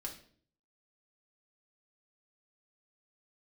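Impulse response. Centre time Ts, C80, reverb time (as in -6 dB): 17 ms, 14.0 dB, 0.50 s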